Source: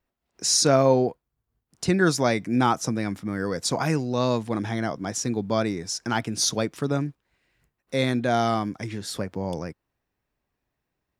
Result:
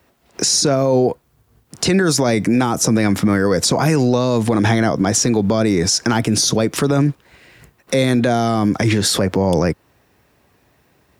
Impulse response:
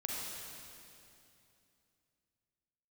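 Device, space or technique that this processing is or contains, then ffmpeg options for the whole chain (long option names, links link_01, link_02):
mastering chain: -filter_complex "[0:a]highpass=frequency=59:width=0.5412,highpass=frequency=59:width=1.3066,equalizer=frequency=470:width_type=o:width=0.77:gain=2,acrossover=split=480|6700[link_01][link_02][link_03];[link_01]acompressor=threshold=-28dB:ratio=4[link_04];[link_02]acompressor=threshold=-33dB:ratio=4[link_05];[link_03]acompressor=threshold=-38dB:ratio=4[link_06];[link_04][link_05][link_06]amix=inputs=3:normalize=0,acompressor=threshold=-37dB:ratio=1.5,alimiter=level_in=29.5dB:limit=-1dB:release=50:level=0:latency=1,volume=-6dB"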